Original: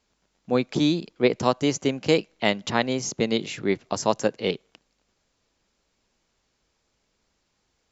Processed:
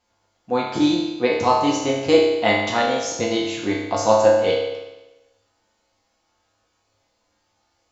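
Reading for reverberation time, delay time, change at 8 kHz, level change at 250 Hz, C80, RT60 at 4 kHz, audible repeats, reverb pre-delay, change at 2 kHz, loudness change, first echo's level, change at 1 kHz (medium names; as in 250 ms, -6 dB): 1.0 s, no echo, no reading, +3.0 dB, 4.5 dB, 1.0 s, no echo, 4 ms, +4.5 dB, +5.0 dB, no echo, +8.5 dB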